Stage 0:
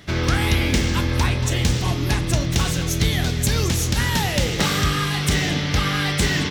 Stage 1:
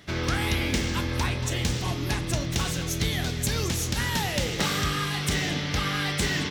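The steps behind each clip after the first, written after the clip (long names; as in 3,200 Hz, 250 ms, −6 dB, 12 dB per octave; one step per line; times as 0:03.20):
low-shelf EQ 140 Hz −4.5 dB
level −5 dB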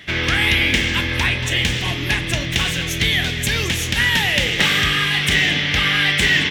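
flat-topped bell 2,400 Hz +11 dB 1.3 octaves
level +4 dB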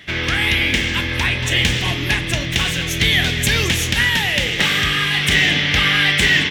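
automatic gain control
level −1 dB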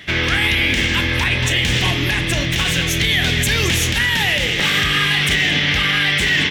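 brickwall limiter −11 dBFS, peak gain reduction 9 dB
level +3.5 dB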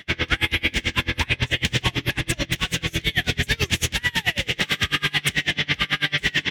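tremolo with a sine in dB 9.1 Hz, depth 31 dB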